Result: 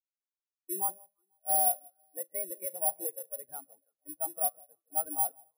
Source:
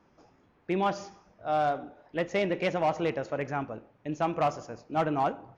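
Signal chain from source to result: high shelf 2000 Hz +11.5 dB; compressor 2:1, threshold -27 dBFS, peak gain reduction 4.5 dB; overdrive pedal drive 7 dB, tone 1300 Hz, clips at -14.5 dBFS; echo with dull and thin repeats by turns 0.164 s, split 1100 Hz, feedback 69%, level -11 dB; careless resampling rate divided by 4×, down none, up zero stuff; spectral expander 2.5:1; gain -6 dB

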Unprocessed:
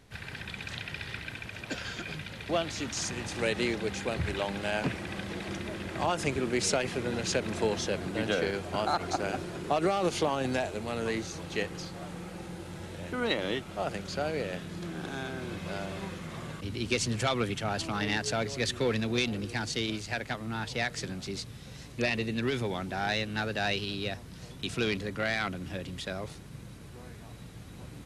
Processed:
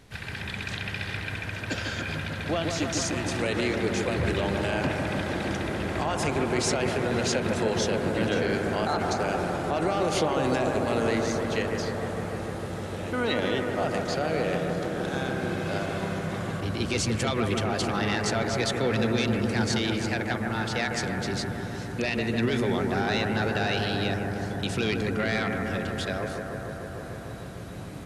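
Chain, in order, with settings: limiter -23 dBFS, peak gain reduction 7.5 dB; analogue delay 0.15 s, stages 2048, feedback 85%, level -5 dB; gain +4.5 dB

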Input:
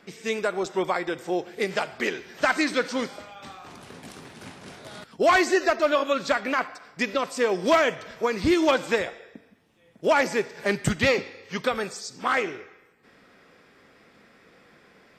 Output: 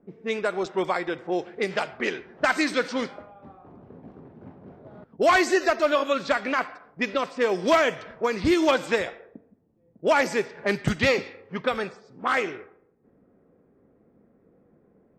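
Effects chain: low-pass opened by the level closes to 420 Hz, open at -20 dBFS

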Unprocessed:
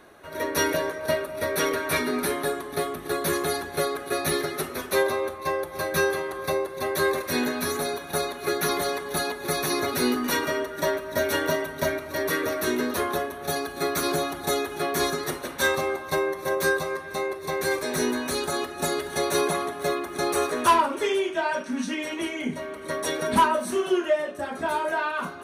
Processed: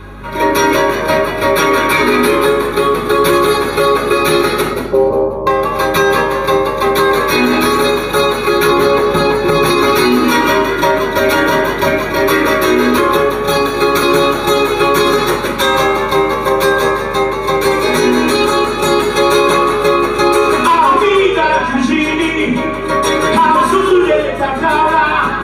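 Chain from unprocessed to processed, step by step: 4.73–5.47 inverse Chebyshev low-pass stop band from 2500 Hz, stop band 60 dB; 8.67–9.66 tilt -2 dB/oct; hum 50 Hz, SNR 14 dB; frequency-shifting echo 0.18 s, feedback 39%, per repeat +76 Hz, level -9 dB; reverb RT60 0.45 s, pre-delay 3 ms, DRR 3 dB; maximiser +8 dB; gain -1 dB

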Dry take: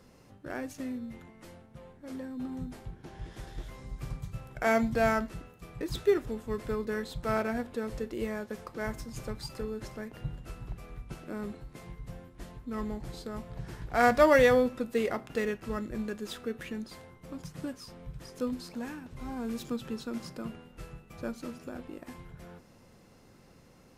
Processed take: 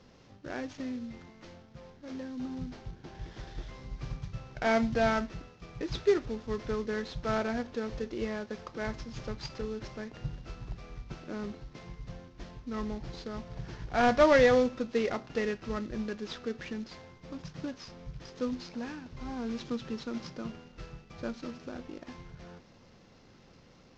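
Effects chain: CVSD 32 kbps

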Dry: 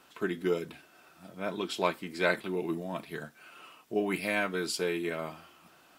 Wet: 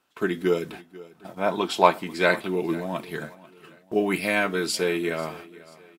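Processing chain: gate -49 dBFS, range -18 dB; 0.73–2.04 bell 830 Hz +10 dB 0.8 oct; feedback echo 0.491 s, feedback 40%, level -20 dB; gain +6.5 dB

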